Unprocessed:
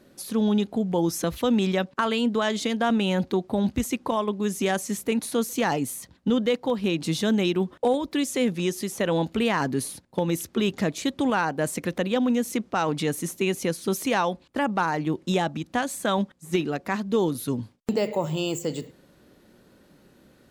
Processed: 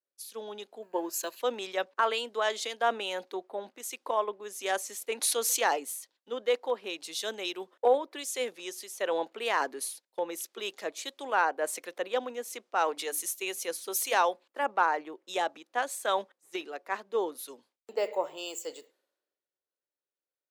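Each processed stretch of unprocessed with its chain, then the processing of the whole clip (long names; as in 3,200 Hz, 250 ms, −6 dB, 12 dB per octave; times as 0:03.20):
0:00.82–0:01.40: mu-law and A-law mismatch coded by A + EQ curve with evenly spaced ripples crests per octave 1.4, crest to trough 10 dB
0:05.01–0:05.67: downward expander −39 dBFS + high-shelf EQ 11,000 Hz −6.5 dB + envelope flattener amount 50%
0:12.81–0:14.67: high-shelf EQ 10,000 Hz +7 dB + mains-hum notches 50/100/150/200/250/300 Hz
whole clip: high-pass filter 420 Hz 24 dB per octave; multiband upward and downward expander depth 100%; level −4 dB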